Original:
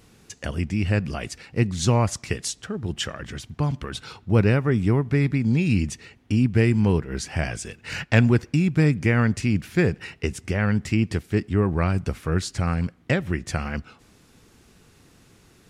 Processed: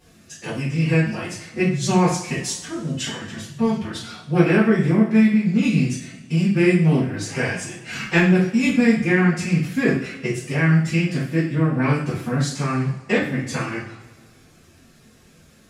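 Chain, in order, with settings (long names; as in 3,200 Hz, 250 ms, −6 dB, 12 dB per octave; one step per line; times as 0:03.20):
phase-vocoder pitch shift with formants kept +7.5 semitones
coupled-rooms reverb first 0.49 s, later 1.8 s, from −18 dB, DRR −8.5 dB
level −5.5 dB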